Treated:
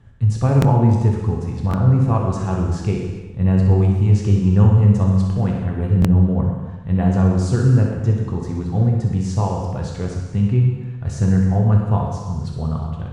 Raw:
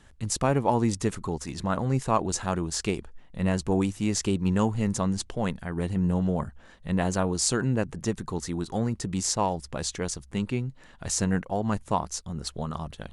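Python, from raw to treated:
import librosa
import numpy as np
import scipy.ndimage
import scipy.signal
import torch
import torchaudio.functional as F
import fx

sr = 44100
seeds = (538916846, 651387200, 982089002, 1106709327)

y = fx.lowpass(x, sr, hz=1300.0, slope=6)
y = fx.peak_eq(y, sr, hz=95.0, db=14.5, octaves=1.2)
y = fx.echo_feedback(y, sr, ms=64, feedback_pct=59, wet_db=-9.0)
y = fx.rev_gated(y, sr, seeds[0], gate_ms=440, shape='falling', drr_db=0.0)
y = fx.buffer_glitch(y, sr, at_s=(0.6, 1.69, 6.0), block=1024, repeats=1)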